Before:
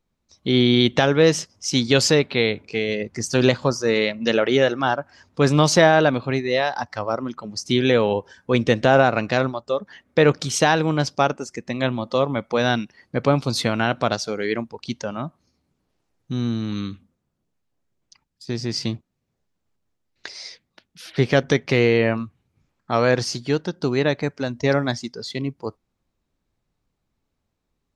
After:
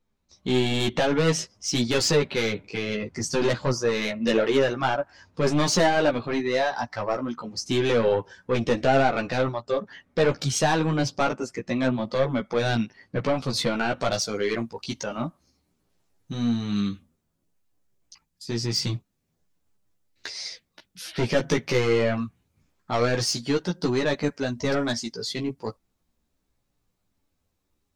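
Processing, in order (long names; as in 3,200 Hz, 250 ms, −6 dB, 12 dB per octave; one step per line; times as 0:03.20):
high-shelf EQ 6,600 Hz −3 dB, from 0:14.00 +9.5 dB
soft clipping −15 dBFS, distortion −10 dB
multi-voice chorus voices 4, 0.32 Hz, delay 14 ms, depth 4 ms
level +2.5 dB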